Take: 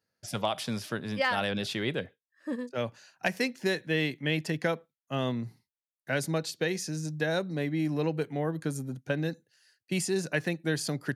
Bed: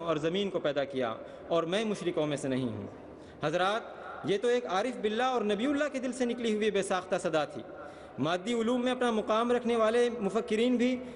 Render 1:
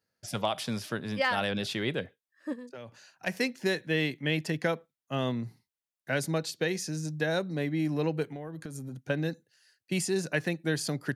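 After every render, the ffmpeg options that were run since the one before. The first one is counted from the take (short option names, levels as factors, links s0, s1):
-filter_complex "[0:a]asplit=3[s0][s1][s2];[s0]afade=t=out:st=2.52:d=0.02[s3];[s1]acompressor=threshold=0.0112:ratio=10:attack=3.2:release=140:knee=1:detection=peak,afade=t=in:st=2.52:d=0.02,afade=t=out:st=3.26:d=0.02[s4];[s2]afade=t=in:st=3.26:d=0.02[s5];[s3][s4][s5]amix=inputs=3:normalize=0,asettb=1/sr,asplit=3[s6][s7][s8];[s6]atrim=end=8.264[s9];[s7]atrim=start=8.26:end=9.06,asetpts=PTS-STARTPTS,afade=t=in:d=0.004:c=qsin,afade=t=out:st=0.796:d=0.004:c=qsin,acompressor=threshold=0.0178:ratio=12:attack=3.2:release=140:knee=1:detection=peak[s10];[s8]atrim=start=9.056[s11];[s9][s10]acrossfade=d=0.004:c1=hsin:c2=qsin[s12];[s12][s11]acrossfade=d=0.004:c1=qsin:c2=hsin"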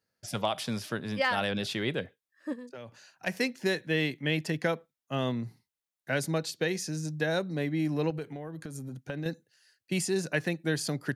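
-filter_complex "[0:a]asettb=1/sr,asplit=3[s0][s1][s2];[s0]atrim=end=8.104[s3];[s1]atrim=start=8.1:end=9.26,asetpts=PTS-STARTPTS,afade=t=in:d=0.004:c=qsin,afade=t=out:st=1.156:d=0.004:c=qsin,acompressor=threshold=0.0251:ratio=4:attack=3.2:release=140:knee=1:detection=peak[s4];[s2]atrim=start=9.256[s5];[s3][s4]acrossfade=d=0.004:c1=hsin:c2=qsin[s6];[s6][s5]acrossfade=d=0.004:c1=qsin:c2=hsin"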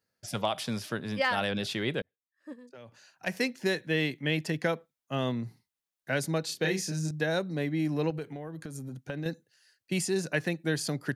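-filter_complex "[0:a]asettb=1/sr,asplit=3[s0][s1][s2];[s0]atrim=end=6.464[s3];[s1]atrim=start=6.46:end=7.11,asetpts=PTS-STARTPTS,afade=t=in:d=0.004:c=qsin,afade=t=out:st=0.646:d=0.004:c=qsin,asplit=2[s4][s5];[s5]adelay=31,volume=0.708[s6];[s4][s6]amix=inputs=2:normalize=0,atrim=end_sample=28665[s7];[s2]atrim=start=7.106[s8];[s3][s7]acrossfade=d=0.004:c1=hsin:c2=qsin[s9];[s9][s8]acrossfade=d=0.004:c1=qsin:c2=hsin,asplit=2[s10][s11];[s10]atrim=end=2.02,asetpts=PTS-STARTPTS,afade=t=out:st=2.016:d=0.004:c=hsin[s12];[s11]atrim=start=2.02,asetpts=PTS-STARTPTS,afade=t=in:d=1.32[s13];[s12][s13]concat=n=2:v=0:a=1"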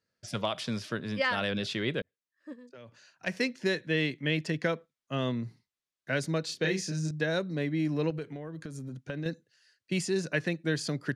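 -af "lowpass=7000,equalizer=f=800:t=o:w=0.33:g=-7.5"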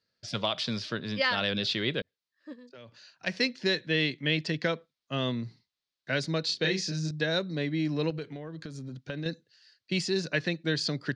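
-af "lowpass=5600,equalizer=f=4300:w=1.4:g=10"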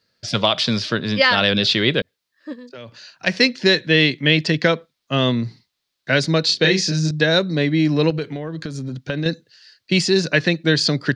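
-af "volume=3.98,alimiter=limit=0.794:level=0:latency=1"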